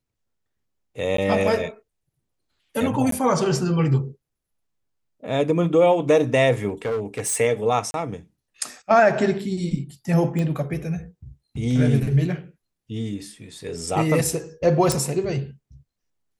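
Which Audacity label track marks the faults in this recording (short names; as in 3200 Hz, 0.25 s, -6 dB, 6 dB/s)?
1.170000	1.180000	gap 13 ms
3.110000	3.120000	gap 13 ms
6.680000	7.370000	clipped -21 dBFS
7.910000	7.940000	gap 31 ms
10.390000	10.390000	pop -16 dBFS
14.920000	14.920000	pop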